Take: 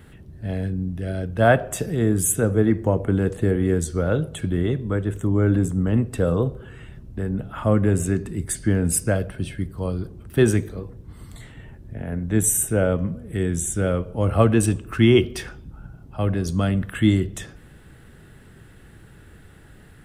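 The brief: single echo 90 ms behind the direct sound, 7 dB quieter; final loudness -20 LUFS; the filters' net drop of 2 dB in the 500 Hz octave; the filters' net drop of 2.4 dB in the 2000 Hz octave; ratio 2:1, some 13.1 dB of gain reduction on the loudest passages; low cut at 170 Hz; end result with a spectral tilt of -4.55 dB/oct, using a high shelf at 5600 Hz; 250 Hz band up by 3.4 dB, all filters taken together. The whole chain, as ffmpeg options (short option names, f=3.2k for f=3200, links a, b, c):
-af "highpass=170,equalizer=f=250:t=o:g=7.5,equalizer=f=500:t=o:g=-5.5,equalizer=f=2k:t=o:g=-3.5,highshelf=f=5.6k:g=4.5,acompressor=threshold=-34dB:ratio=2,aecho=1:1:90:0.447,volume=10.5dB"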